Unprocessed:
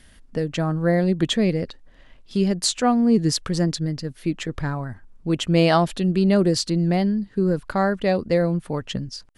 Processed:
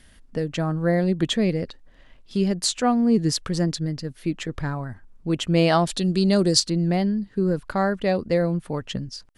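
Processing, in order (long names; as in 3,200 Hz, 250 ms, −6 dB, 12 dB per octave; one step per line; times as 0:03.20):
0:05.87–0:06.60: flat-topped bell 6,000 Hz +9.5 dB
level −1.5 dB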